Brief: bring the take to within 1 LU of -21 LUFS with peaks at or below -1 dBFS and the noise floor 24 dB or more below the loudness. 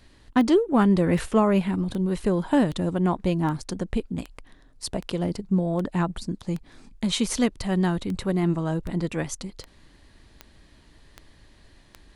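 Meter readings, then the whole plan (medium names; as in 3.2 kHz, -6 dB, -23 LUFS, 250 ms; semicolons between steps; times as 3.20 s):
clicks found 16; loudness -25.0 LUFS; peak level -8.0 dBFS; loudness target -21.0 LUFS
-> de-click; trim +4 dB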